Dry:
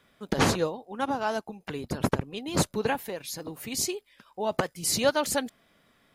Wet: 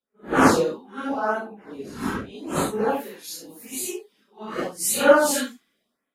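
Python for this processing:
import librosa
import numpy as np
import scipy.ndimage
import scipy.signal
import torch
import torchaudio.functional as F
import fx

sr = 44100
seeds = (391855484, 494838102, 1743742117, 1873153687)

y = fx.phase_scramble(x, sr, seeds[0], window_ms=200)
y = fx.dynamic_eq(y, sr, hz=1300.0, q=2.8, threshold_db=-47.0, ratio=4.0, max_db=7)
y = fx.filter_lfo_notch(y, sr, shape='sine', hz=0.85, low_hz=560.0, high_hz=5500.0, q=0.89)
y = fx.low_shelf_res(y, sr, hz=180.0, db=-9.0, q=1.5)
y = fx.band_widen(y, sr, depth_pct=70)
y = F.gain(torch.from_numpy(y), 3.0).numpy()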